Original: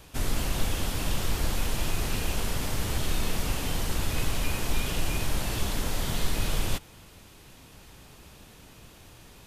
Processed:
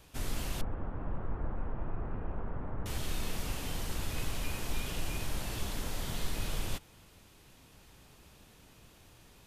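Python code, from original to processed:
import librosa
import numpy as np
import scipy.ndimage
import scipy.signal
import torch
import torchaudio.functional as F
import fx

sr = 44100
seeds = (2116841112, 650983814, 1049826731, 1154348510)

y = fx.lowpass(x, sr, hz=1400.0, slope=24, at=(0.61, 2.86))
y = y * librosa.db_to_amplitude(-7.5)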